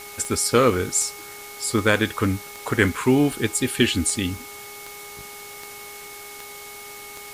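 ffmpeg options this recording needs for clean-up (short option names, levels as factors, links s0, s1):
-af "adeclick=t=4,bandreject=f=410.7:t=h:w=4,bandreject=f=821.4:t=h:w=4,bandreject=f=1232.1:t=h:w=4,bandreject=f=2200:w=30,afwtdn=0.01"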